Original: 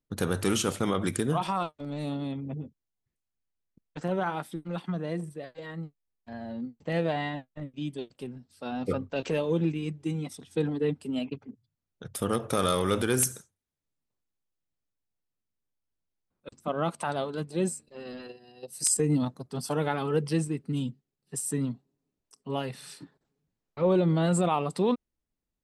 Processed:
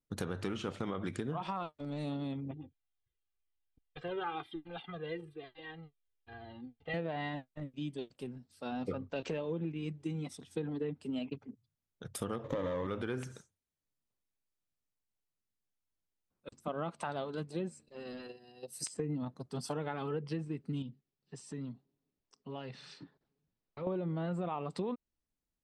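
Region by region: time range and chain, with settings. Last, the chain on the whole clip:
2.51–6.94 resonant high shelf 4700 Hz -12.5 dB, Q 3 + comb 2.5 ms, depth 78% + cascading flanger falling 1 Hz
12.44–12.87 median filter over 25 samples + ripple EQ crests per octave 1.1, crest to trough 12 dB + sample leveller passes 1
20.82–23.87 LPF 5400 Hz 24 dB/oct + compressor 2:1, threshold -40 dBFS
whole clip: treble ducked by the level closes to 2500 Hz, closed at -22 dBFS; compressor, threshold -29 dBFS; gain -4 dB

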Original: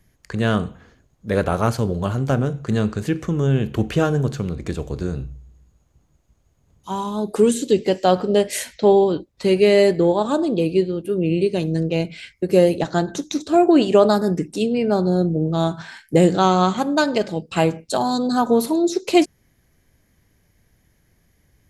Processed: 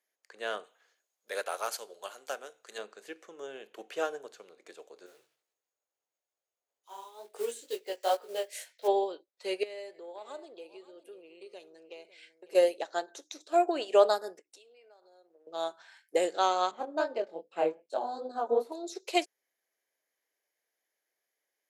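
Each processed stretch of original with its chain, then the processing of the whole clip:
0.64–2.78 tilt +3 dB/oct + overloaded stage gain 11 dB
5.06–8.88 block floating point 5-bit + resonant low shelf 130 Hz +7 dB, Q 3 + chorus 2.2 Hz, delay 18.5 ms, depth 3.5 ms
9.63–12.55 LPF 11000 Hz + compressor 8:1, threshold -22 dBFS + echo 0.551 s -14.5 dB
14.39–15.47 weighting filter A + compressor 20:1, threshold -34 dBFS + transient shaper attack +3 dB, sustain -11 dB
16.71–18.72 tilt -4.5 dB/oct + chorus 2.5 Hz, delay 19 ms, depth 6.5 ms
whole clip: HPF 470 Hz 24 dB/oct; bell 1100 Hz -3 dB 0.62 oct; upward expander 1.5:1, over -37 dBFS; gain -4.5 dB

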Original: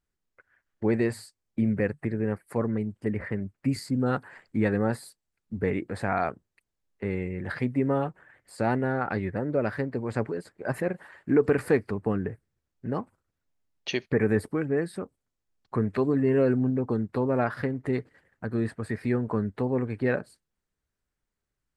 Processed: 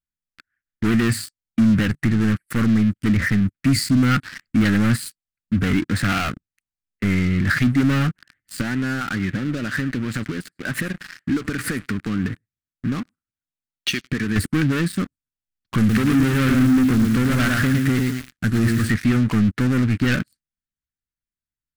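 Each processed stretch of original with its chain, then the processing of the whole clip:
5.9–6.3 HPF 74 Hz + Doppler distortion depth 0.22 ms
8.61–14.36 low shelf 84 Hz -11.5 dB + compressor 3:1, threshold -34 dBFS + echo 0.104 s -20.5 dB
15.78–18.91 CVSD 64 kbps + lo-fi delay 0.112 s, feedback 35%, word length 8-bit, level -5 dB
whole clip: sample leveller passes 5; band shelf 620 Hz -16 dB; gain -1 dB

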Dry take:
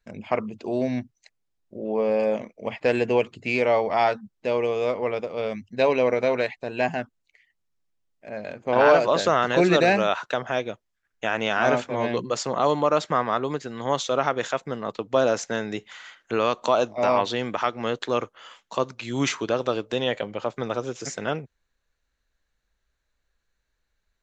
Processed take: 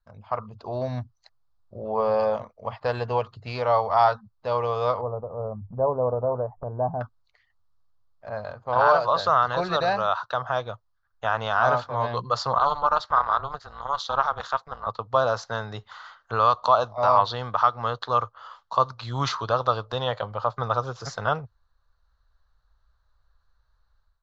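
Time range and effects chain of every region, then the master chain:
5.01–7.01 Gaussian blur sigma 11 samples + upward compressor, threshold -30 dBFS
12.58–14.87 HPF 740 Hz 6 dB/oct + AM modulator 280 Hz, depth 80%
whole clip: dynamic EQ 3900 Hz, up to +4 dB, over -41 dBFS, Q 1.1; AGC; EQ curve 110 Hz 0 dB, 190 Hz -15 dB, 330 Hz -22 dB, 470 Hz -12 dB, 1200 Hz +2 dB, 2300 Hz -23 dB, 4400 Hz -7 dB, 8800 Hz -29 dB

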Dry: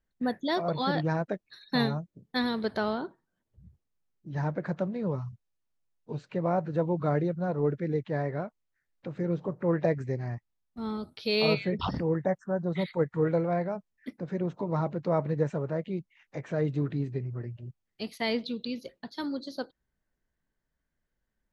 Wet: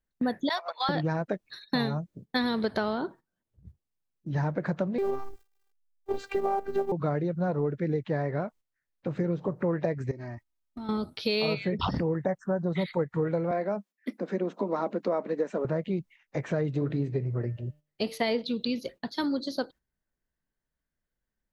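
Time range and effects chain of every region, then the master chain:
0.49–0.89 HPF 770 Hz 24 dB/oct + gate -36 dBFS, range -14 dB
4.98–6.92 G.711 law mismatch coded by mu + bell 750 Hz +6 dB 2.3 oct + robotiser 395 Hz
10.11–10.89 comb 3.2 ms, depth 75% + compressor 10:1, threshold -41 dBFS
13.51–15.65 elliptic high-pass 200 Hz + notch 880 Hz, Q 16
16.75–18.42 bell 540 Hz +7 dB 0.82 oct + de-hum 149.7 Hz, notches 36
whole clip: gate -52 dBFS, range -11 dB; compressor, threshold -31 dBFS; gain +6.5 dB

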